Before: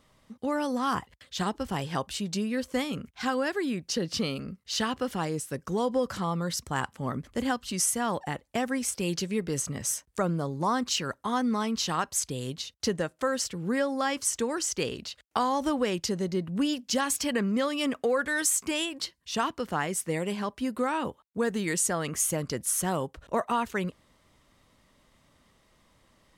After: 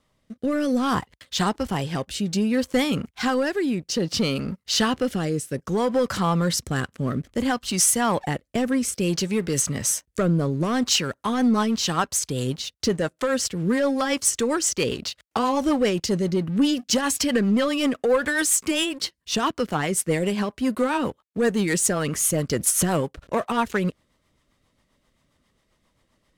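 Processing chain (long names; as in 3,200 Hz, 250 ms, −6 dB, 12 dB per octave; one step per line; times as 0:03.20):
0:22.56–0:23.01: transient designer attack +4 dB, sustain +8 dB
leveller curve on the samples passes 2
rotating-speaker cabinet horn 0.6 Hz, later 7.5 Hz, at 0:10.70
level +2 dB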